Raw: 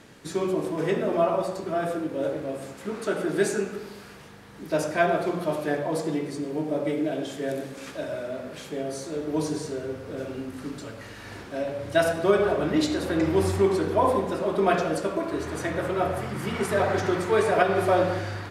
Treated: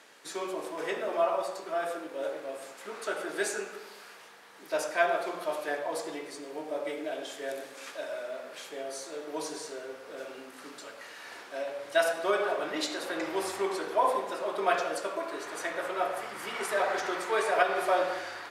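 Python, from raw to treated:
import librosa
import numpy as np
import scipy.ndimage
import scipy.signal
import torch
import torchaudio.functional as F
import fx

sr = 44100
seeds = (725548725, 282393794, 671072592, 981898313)

y = scipy.signal.sosfilt(scipy.signal.butter(2, 610.0, 'highpass', fs=sr, output='sos'), x)
y = F.gain(torch.from_numpy(y), -1.5).numpy()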